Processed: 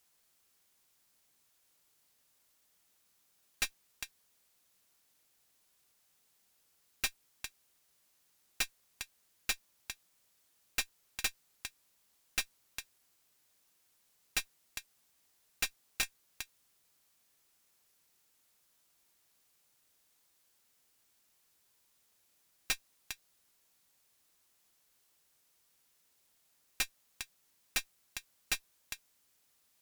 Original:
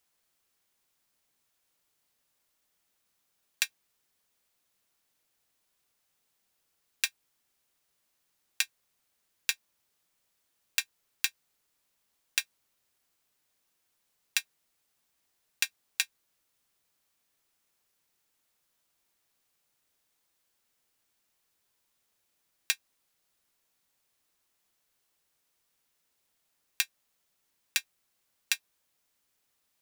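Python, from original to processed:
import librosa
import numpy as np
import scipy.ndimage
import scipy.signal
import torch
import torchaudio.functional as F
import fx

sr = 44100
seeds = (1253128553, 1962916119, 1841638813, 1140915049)

y = fx.bass_treble(x, sr, bass_db=1, treble_db=3)
y = y + 10.0 ** (-17.5 / 20.0) * np.pad(y, (int(406 * sr / 1000.0), 0))[:len(y)]
y = fx.tube_stage(y, sr, drive_db=30.0, bias=0.75)
y = 10.0 ** (-28.5 / 20.0) * (np.abs((y / 10.0 ** (-28.5 / 20.0) + 3.0) % 4.0 - 2.0) - 1.0)
y = y * librosa.db_to_amplitude(6.5)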